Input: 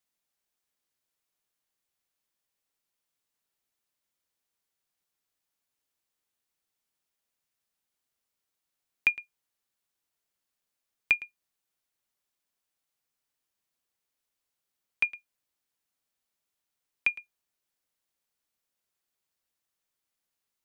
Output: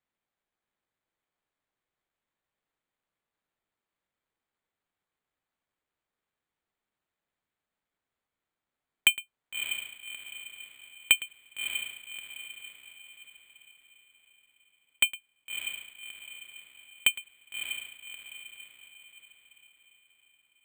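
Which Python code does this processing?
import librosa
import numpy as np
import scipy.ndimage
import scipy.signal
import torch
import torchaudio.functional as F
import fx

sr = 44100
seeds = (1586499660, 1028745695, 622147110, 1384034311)

y = fx.echo_diffused(x, sr, ms=620, feedback_pct=46, wet_db=-7)
y = np.repeat(scipy.signal.resample_poly(y, 1, 8), 8)[:len(y)]
y = y * librosa.db_to_amplitude(3.0)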